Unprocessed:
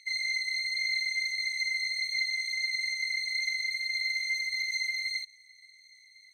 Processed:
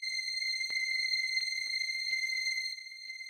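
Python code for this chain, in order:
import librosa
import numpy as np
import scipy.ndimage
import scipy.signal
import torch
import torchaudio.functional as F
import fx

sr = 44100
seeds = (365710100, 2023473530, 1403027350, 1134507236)

y = fx.stretch_grains(x, sr, factor=0.52, grain_ms=95.0)
y = fx.filter_lfo_highpass(y, sr, shape='square', hz=0.71, low_hz=430.0, high_hz=2500.0, q=0.74)
y = y + 10.0 ** (-10.5 / 20.0) * np.pad(y, (int(969 * sr / 1000.0), 0))[:len(y)]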